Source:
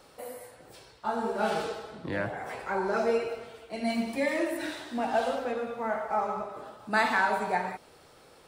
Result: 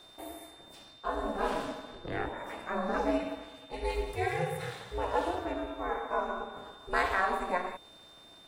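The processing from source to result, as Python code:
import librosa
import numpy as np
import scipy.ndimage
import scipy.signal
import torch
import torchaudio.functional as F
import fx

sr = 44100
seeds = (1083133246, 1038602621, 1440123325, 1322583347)

y = x * np.sin(2.0 * np.pi * 180.0 * np.arange(len(x)) / sr)
y = fx.dynamic_eq(y, sr, hz=4600.0, q=0.91, threshold_db=-54.0, ratio=4.0, max_db=-4)
y = y + 10.0 ** (-54.0 / 20.0) * np.sin(2.0 * np.pi * 3600.0 * np.arange(len(y)) / sr)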